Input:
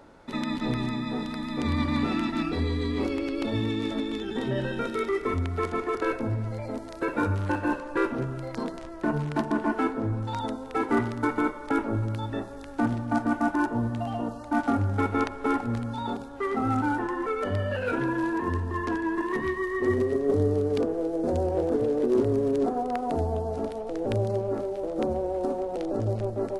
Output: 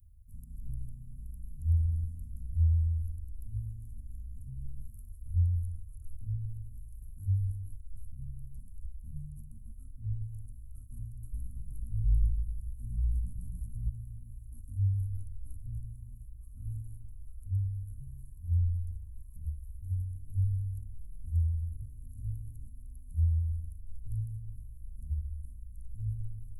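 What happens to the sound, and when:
11.21–13.89 s: frequency-shifting echo 109 ms, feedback 36%, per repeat -58 Hz, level -3.5 dB
whole clip: inverse Chebyshev band-stop 340–4200 Hz, stop band 70 dB; dynamic bell 120 Hz, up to -5 dB, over -56 dBFS, Q 3.5; trim +8.5 dB

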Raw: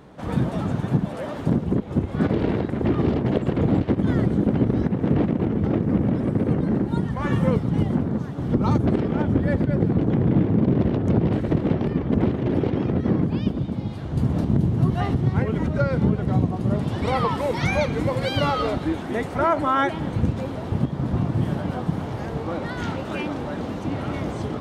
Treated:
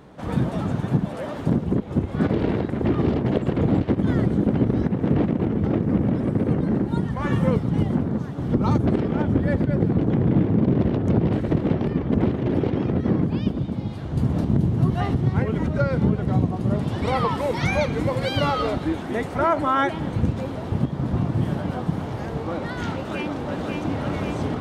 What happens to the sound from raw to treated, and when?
22.94–24.00 s: echo throw 540 ms, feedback 70%, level -4 dB

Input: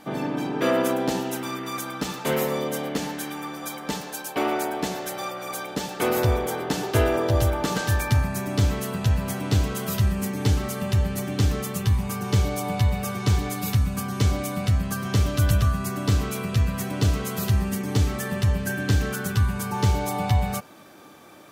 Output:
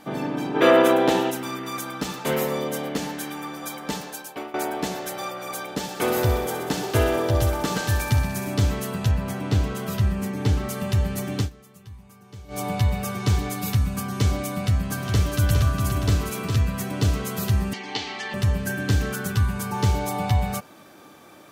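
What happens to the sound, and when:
0.55–1.31 s: time-frequency box 290–4100 Hz +7 dB
4.04–4.54 s: fade out, to -19 dB
5.72–8.54 s: feedback echo behind a high-pass 63 ms, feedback 73%, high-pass 2.5 kHz, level -8.5 dB
9.11–10.69 s: treble shelf 4.4 kHz -7.5 dB
11.38–12.60 s: dip -21 dB, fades 0.12 s
14.49–16.56 s: delay 410 ms -5.5 dB
17.73–18.34 s: cabinet simulation 430–5800 Hz, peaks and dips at 560 Hz -10 dB, 810 Hz +9 dB, 1.3 kHz -6 dB, 2.1 kHz +7 dB, 3 kHz +8 dB, 4.3 kHz +7 dB

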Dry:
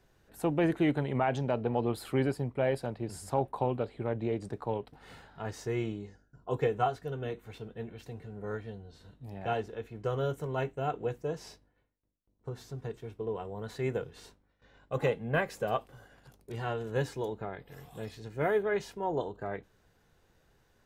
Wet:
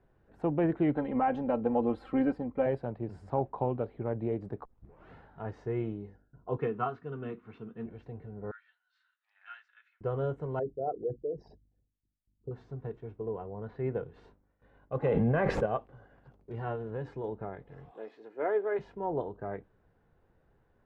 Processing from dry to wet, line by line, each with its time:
0.95–2.66 s: comb 3.8 ms, depth 82%
4.65 s: tape start 0.49 s
6.58–7.86 s: cabinet simulation 140–7600 Hz, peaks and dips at 230 Hz +6 dB, 550 Hz -9 dB, 800 Hz -6 dB, 1.2 kHz +9 dB, 2.7 kHz +5 dB
8.51–10.01 s: elliptic high-pass 1.4 kHz, stop band 80 dB
10.59–12.51 s: resonances exaggerated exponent 3
13.19–13.93 s: distance through air 190 m
15.08–15.66 s: level flattener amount 100%
16.75–17.24 s: compression 4:1, threshold -32 dBFS
17.91–18.79 s: high-pass 310 Hz 24 dB/octave
whole clip: Bessel low-pass 1.2 kHz, order 2

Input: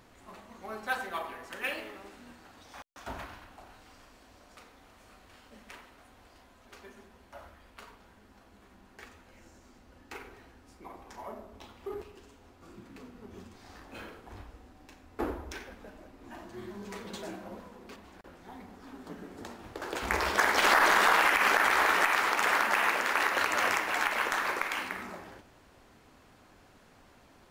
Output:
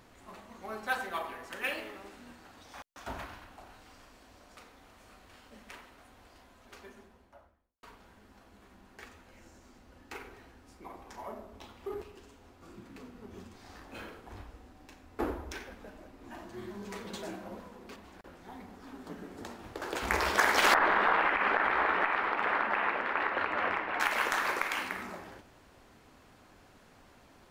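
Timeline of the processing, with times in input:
6.78–7.83 s: studio fade out
20.74–24.00 s: distance through air 470 m

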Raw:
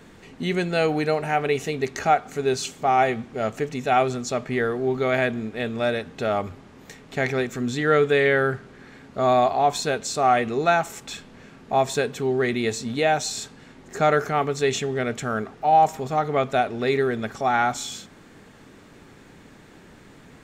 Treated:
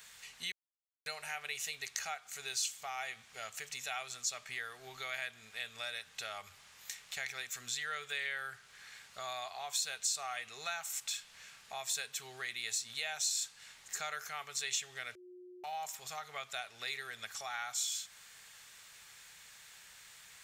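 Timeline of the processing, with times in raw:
0.52–1.06 s: mute
15.15–15.64 s: bleep 361 Hz -18 dBFS
whole clip: amplifier tone stack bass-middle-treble 10-0-10; compression 2:1, threshold -44 dBFS; tilt EQ +3 dB/octave; trim -2 dB

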